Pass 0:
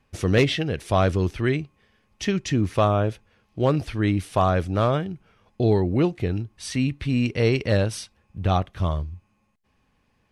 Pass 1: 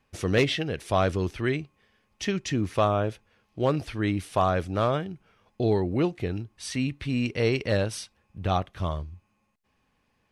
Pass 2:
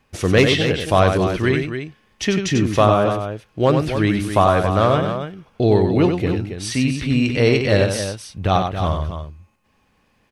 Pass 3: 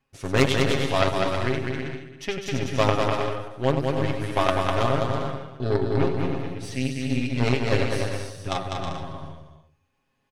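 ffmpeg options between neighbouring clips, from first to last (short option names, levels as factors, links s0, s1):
-af "lowshelf=f=220:g=-5,volume=0.794"
-af "aecho=1:1:93.29|274.1:0.501|0.355,volume=2.51"
-af "aeval=exprs='0.891*(cos(1*acos(clip(val(0)/0.891,-1,1)))-cos(1*PI/2))+0.282*(cos(3*acos(clip(val(0)/0.891,-1,1)))-cos(3*PI/2))+0.0501*(cos(4*acos(clip(val(0)/0.891,-1,1)))-cos(4*PI/2))+0.0251*(cos(5*acos(clip(val(0)/0.891,-1,1)))-cos(5*PI/2))':c=same,aecho=1:1:7.4:0.67,aecho=1:1:200|320|392|435.2|461.1:0.631|0.398|0.251|0.158|0.1,volume=0.891"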